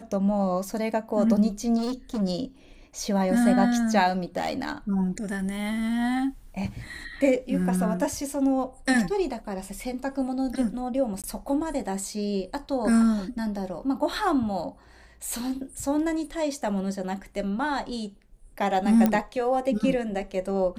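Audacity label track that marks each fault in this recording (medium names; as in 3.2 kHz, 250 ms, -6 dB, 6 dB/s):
1.770000	2.220000	clipped -25 dBFS
4.370000	4.730000	clipped -23 dBFS
11.220000	11.240000	dropout 17 ms
19.060000	19.060000	pop -10 dBFS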